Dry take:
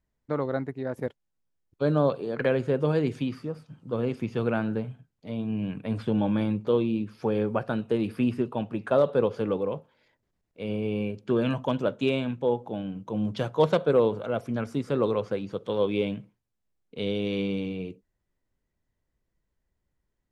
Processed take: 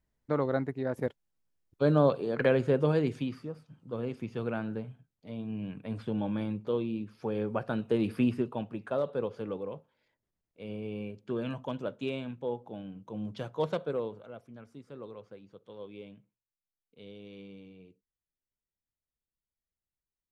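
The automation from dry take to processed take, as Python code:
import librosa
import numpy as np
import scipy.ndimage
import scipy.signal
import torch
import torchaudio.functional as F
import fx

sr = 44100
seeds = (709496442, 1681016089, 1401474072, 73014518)

y = fx.gain(x, sr, db=fx.line((2.73, -0.5), (3.63, -7.0), (7.26, -7.0), (8.14, -0.5), (8.95, -9.0), (13.78, -9.0), (14.49, -19.5)))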